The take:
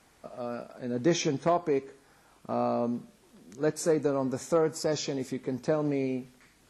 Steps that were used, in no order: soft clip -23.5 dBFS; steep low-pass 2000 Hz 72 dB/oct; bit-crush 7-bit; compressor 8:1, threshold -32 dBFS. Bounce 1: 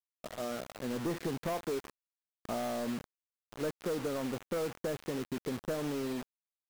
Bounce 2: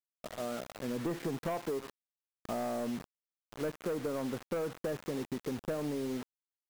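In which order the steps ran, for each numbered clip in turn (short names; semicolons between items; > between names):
steep low-pass > soft clip > compressor > bit-crush; steep low-pass > soft clip > bit-crush > compressor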